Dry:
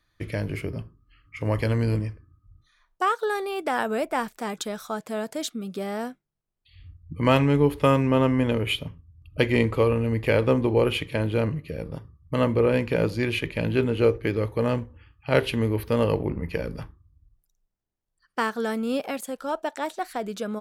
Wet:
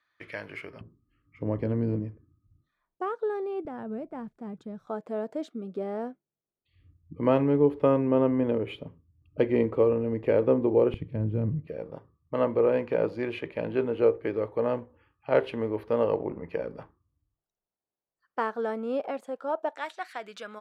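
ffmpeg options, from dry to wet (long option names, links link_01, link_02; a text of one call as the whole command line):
ffmpeg -i in.wav -af "asetnsamples=nb_out_samples=441:pad=0,asendcmd='0.81 bandpass f 280;3.65 bandpass f 120;4.87 bandpass f 420;10.94 bandpass f 140;11.67 bandpass f 640;19.78 bandpass f 1900',bandpass=frequency=1500:width_type=q:width=0.91:csg=0" out.wav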